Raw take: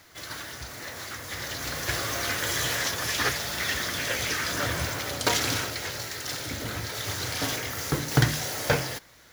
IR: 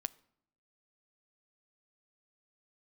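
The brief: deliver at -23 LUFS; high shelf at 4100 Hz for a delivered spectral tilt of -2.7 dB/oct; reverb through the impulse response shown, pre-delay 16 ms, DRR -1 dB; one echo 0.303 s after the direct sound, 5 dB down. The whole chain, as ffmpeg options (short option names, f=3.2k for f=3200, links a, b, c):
-filter_complex "[0:a]highshelf=f=4.1k:g=3.5,aecho=1:1:303:0.562,asplit=2[a][b];[1:a]atrim=start_sample=2205,adelay=16[c];[b][c]afir=irnorm=-1:irlink=0,volume=2.5dB[d];[a][d]amix=inputs=2:normalize=0,volume=-1dB"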